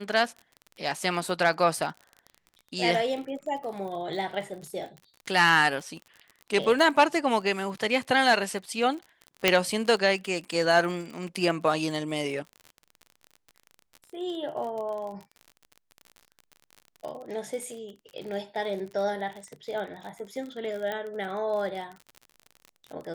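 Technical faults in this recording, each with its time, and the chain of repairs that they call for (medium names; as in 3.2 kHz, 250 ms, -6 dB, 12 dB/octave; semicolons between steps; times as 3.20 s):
crackle 39 per s -35 dBFS
9.48 s: pop -4 dBFS
20.92 s: pop -19 dBFS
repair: de-click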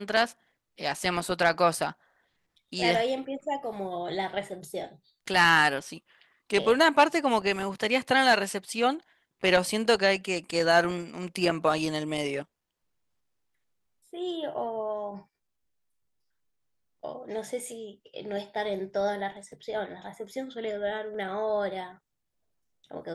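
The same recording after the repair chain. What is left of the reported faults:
nothing left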